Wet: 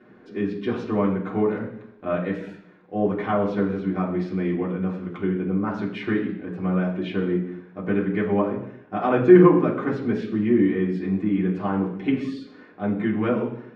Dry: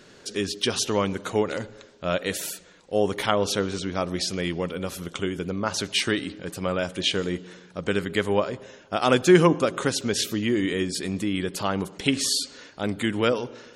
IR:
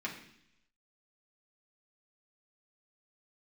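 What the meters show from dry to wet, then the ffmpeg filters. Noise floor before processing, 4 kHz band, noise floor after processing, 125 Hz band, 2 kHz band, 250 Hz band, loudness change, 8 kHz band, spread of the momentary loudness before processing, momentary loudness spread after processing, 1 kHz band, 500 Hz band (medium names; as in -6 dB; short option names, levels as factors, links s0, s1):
-51 dBFS, -18.5 dB, -50 dBFS, +3.5 dB, -4.0 dB, +5.5 dB, +2.0 dB, under -30 dB, 10 LU, 11 LU, 0.0 dB, +1.5 dB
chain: -filter_complex "[0:a]lowpass=1200[s0];[1:a]atrim=start_sample=2205,afade=t=out:st=0.34:d=0.01,atrim=end_sample=15435[s1];[s0][s1]afir=irnorm=-1:irlink=0"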